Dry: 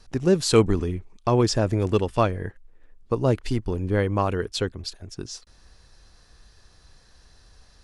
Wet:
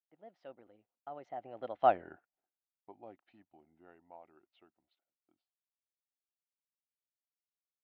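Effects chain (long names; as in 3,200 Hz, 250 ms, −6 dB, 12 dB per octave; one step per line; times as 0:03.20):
source passing by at 0:01.94, 55 m/s, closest 5.6 metres
noise gate with hold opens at −55 dBFS
loudspeaker in its box 440–2,500 Hz, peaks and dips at 440 Hz −10 dB, 730 Hz +9 dB, 1,100 Hz −8 dB, 1,600 Hz −6 dB, 2,300 Hz −5 dB
level −3.5 dB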